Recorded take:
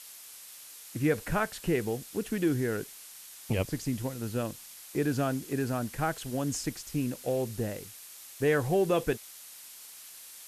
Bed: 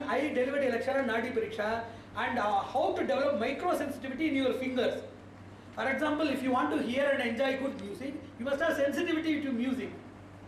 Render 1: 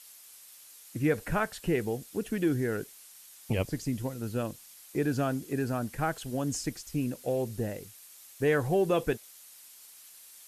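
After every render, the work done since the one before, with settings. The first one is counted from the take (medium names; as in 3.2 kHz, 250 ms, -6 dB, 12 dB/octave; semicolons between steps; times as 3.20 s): noise reduction 6 dB, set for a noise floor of -49 dBFS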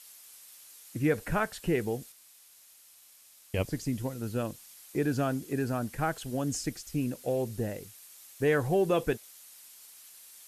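2.12–3.54 s: room tone; 6.41–6.97 s: band-stop 990 Hz, Q 8.2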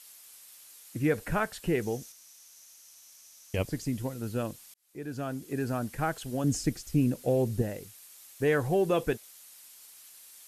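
1.82–3.56 s: peaking EQ 6 kHz +12.5 dB 0.29 oct; 4.74–5.71 s: fade in linear; 6.44–7.62 s: bass shelf 420 Hz +7.5 dB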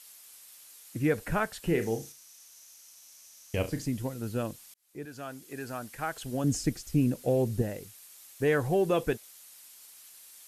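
1.59–3.86 s: flutter echo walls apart 6.1 m, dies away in 0.24 s; 5.05–6.16 s: bass shelf 500 Hz -11.5 dB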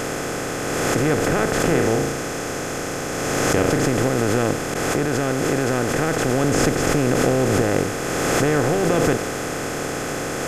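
spectral levelling over time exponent 0.2; swell ahead of each attack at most 21 dB/s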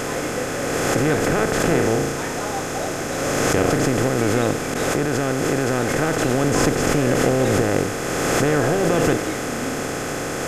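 add bed -1 dB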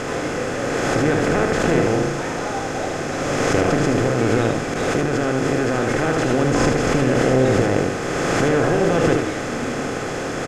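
distance through air 69 m; delay 77 ms -5 dB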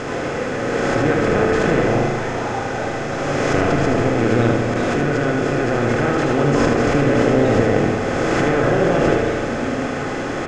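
distance through air 62 m; spring tank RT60 2.9 s, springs 34/49 ms, chirp 50 ms, DRR 3 dB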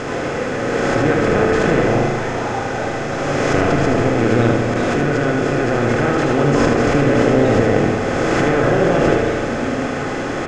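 trim +1.5 dB; peak limiter -1 dBFS, peak gain reduction 1 dB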